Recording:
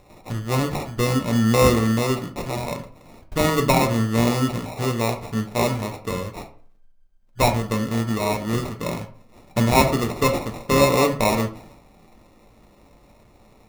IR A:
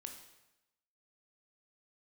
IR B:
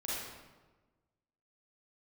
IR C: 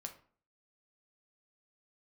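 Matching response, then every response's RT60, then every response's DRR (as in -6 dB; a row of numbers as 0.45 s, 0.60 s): C; 0.95 s, 1.3 s, 0.45 s; 4.0 dB, -8.0 dB, 4.0 dB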